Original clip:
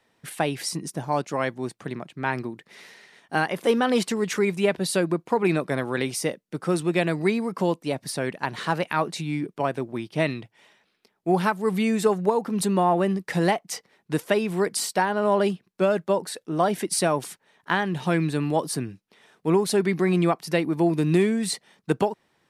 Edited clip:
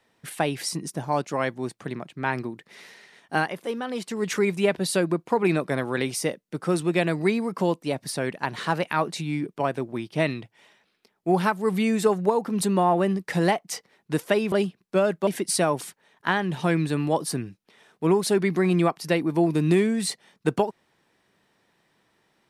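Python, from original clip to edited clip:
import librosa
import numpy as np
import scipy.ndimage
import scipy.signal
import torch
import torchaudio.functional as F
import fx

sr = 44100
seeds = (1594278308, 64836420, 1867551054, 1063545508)

y = fx.edit(x, sr, fx.fade_down_up(start_s=3.39, length_s=0.89, db=-9.0, fade_s=0.22),
    fx.cut(start_s=14.52, length_s=0.86),
    fx.cut(start_s=16.13, length_s=0.57), tone=tone)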